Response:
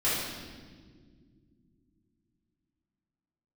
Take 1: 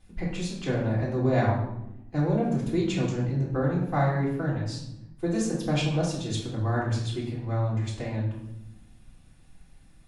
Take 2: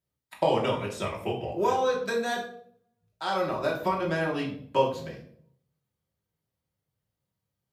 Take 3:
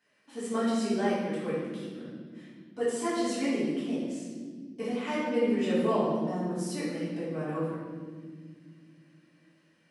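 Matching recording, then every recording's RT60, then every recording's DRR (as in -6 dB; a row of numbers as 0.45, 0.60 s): 3; 0.90 s, 0.60 s, not exponential; -8.0, -4.0, -11.5 dB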